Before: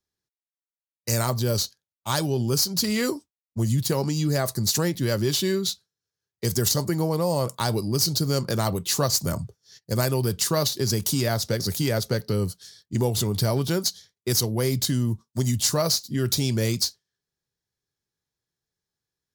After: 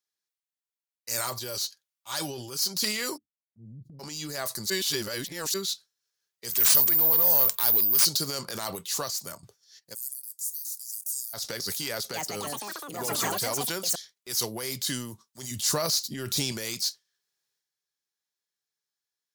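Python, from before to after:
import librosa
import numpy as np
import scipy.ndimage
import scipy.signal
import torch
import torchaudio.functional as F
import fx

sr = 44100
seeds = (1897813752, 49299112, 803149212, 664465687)

y = fx.notch_comb(x, sr, f0_hz=220.0, at=(1.17, 2.66))
y = fx.cheby2_lowpass(y, sr, hz=750.0, order=4, stop_db=60, at=(3.16, 3.99), fade=0.02)
y = fx.resample_bad(y, sr, factor=3, down='none', up='zero_stuff', at=(6.52, 8.05))
y = fx.cheby2_highpass(y, sr, hz=2400.0, order=4, stop_db=60, at=(9.93, 11.33), fade=0.02)
y = fx.echo_pitch(y, sr, ms=268, semitones=6, count=3, db_per_echo=-3.0, at=(11.87, 14.44))
y = fx.low_shelf(y, sr, hz=400.0, db=8.0, at=(15.51, 16.52))
y = fx.edit(y, sr, fx.reverse_span(start_s=4.7, length_s=0.84),
    fx.fade_out_to(start_s=8.72, length_s=0.71, floor_db=-15.0), tone=tone)
y = fx.highpass(y, sr, hz=1500.0, slope=6)
y = fx.transient(y, sr, attack_db=-7, sustain_db=7)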